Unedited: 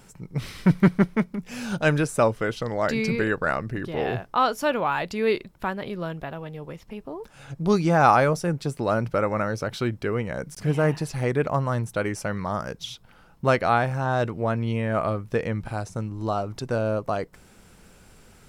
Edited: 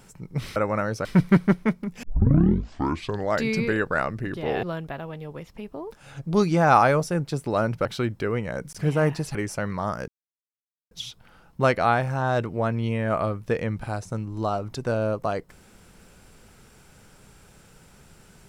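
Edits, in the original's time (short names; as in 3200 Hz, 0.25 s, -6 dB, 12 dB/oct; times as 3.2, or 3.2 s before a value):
1.54 tape start 1.28 s
4.14–5.96 cut
9.18–9.67 move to 0.56
11.17–12.02 cut
12.75 insert silence 0.83 s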